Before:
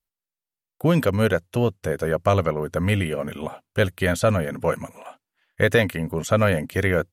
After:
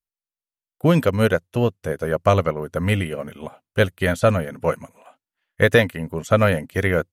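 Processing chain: upward expander 1.5:1, over -38 dBFS; gain +4 dB

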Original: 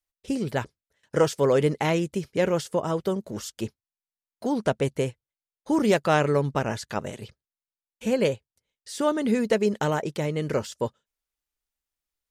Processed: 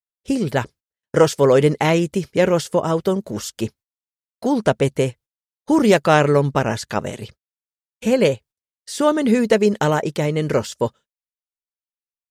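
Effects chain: gate -49 dBFS, range -31 dB; gain +7 dB

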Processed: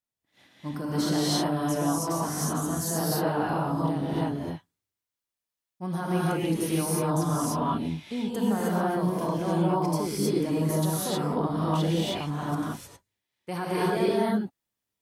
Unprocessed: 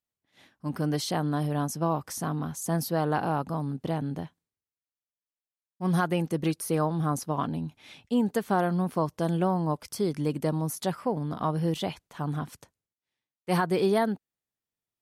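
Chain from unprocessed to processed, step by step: limiter -22.5 dBFS, peak gain reduction 8.5 dB; non-linear reverb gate 0.34 s rising, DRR -7.5 dB; gain -2.5 dB

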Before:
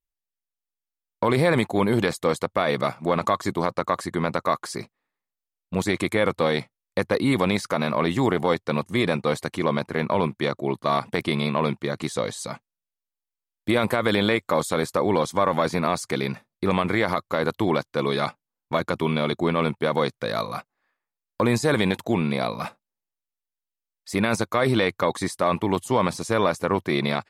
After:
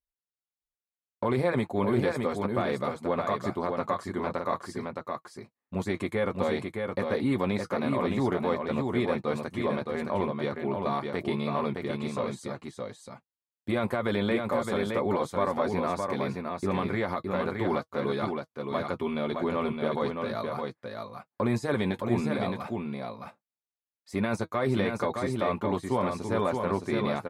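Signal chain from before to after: high shelf 2300 Hz -9 dB; notch comb 160 Hz; on a send: echo 0.616 s -4.5 dB; on the sum: gain -4.5 dB

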